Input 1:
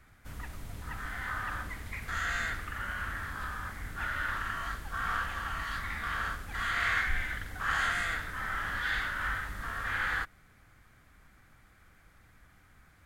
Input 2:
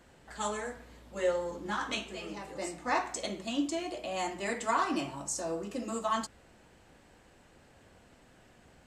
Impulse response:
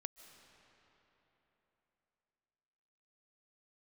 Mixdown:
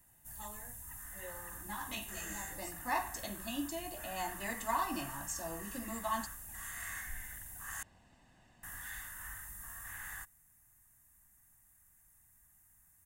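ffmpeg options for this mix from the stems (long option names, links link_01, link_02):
-filter_complex "[0:a]aexciter=amount=15:drive=6.6:freq=6600,volume=-17.5dB,asplit=3[link_01][link_02][link_03];[link_01]atrim=end=7.83,asetpts=PTS-STARTPTS,afade=type=out:start_time=7.826:duration=0.004:curve=hsin[link_04];[link_02]atrim=start=7.83:end=8.63,asetpts=PTS-STARTPTS,volume=0[link_05];[link_03]atrim=start=8.63,asetpts=PTS-STARTPTS,afade=type=in:duration=0.004:curve=hsin[link_06];[link_04][link_05][link_06]concat=n=3:v=0:a=1[link_07];[1:a]volume=-7dB,afade=type=in:start_time=1.5:duration=0.55:silence=0.334965[link_08];[link_07][link_08]amix=inputs=2:normalize=0,aecho=1:1:1.1:0.62"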